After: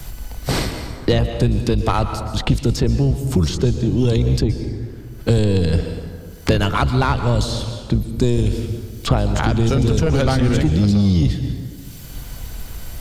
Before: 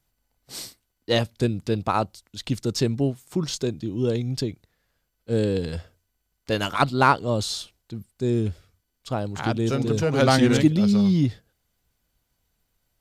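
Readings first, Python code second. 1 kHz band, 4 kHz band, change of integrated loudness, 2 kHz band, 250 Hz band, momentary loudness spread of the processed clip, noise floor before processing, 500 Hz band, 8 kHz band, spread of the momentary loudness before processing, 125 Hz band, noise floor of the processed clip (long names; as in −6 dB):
+1.0 dB, +3.5 dB, +4.5 dB, +2.0 dB, +4.0 dB, 16 LU, −76 dBFS, +3.5 dB, +3.5 dB, 15 LU, +9.5 dB, −35 dBFS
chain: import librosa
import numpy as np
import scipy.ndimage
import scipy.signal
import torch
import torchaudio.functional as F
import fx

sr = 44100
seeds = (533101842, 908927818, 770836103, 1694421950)

p1 = fx.octave_divider(x, sr, octaves=1, level_db=-4.0)
p2 = fx.low_shelf(p1, sr, hz=100.0, db=10.0)
p3 = fx.over_compress(p2, sr, threshold_db=-20.0, ratio=-1.0)
p4 = p2 + (p3 * librosa.db_to_amplitude(-2.0))
p5 = 10.0 ** (-6.5 / 20.0) * np.tanh(p4 / 10.0 ** (-6.5 / 20.0))
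p6 = fx.rev_plate(p5, sr, seeds[0], rt60_s=0.95, hf_ratio=0.7, predelay_ms=105, drr_db=10.5)
p7 = fx.band_squash(p6, sr, depth_pct=100)
y = p7 * librosa.db_to_amplitude(-1.0)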